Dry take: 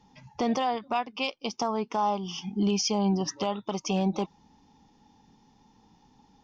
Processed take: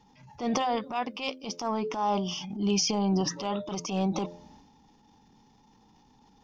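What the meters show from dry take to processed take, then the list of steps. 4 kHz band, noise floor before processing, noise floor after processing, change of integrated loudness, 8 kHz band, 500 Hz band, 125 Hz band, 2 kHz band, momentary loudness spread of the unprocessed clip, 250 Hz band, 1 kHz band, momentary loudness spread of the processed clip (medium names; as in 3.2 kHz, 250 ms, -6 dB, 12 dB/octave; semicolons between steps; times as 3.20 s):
+0.5 dB, -62 dBFS, -61 dBFS, -1.0 dB, no reading, -1.0 dB, -0.5 dB, -1.5 dB, 8 LU, -1.0 dB, -1.5 dB, 9 LU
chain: de-hum 86.61 Hz, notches 7; transient shaper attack -10 dB, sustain +7 dB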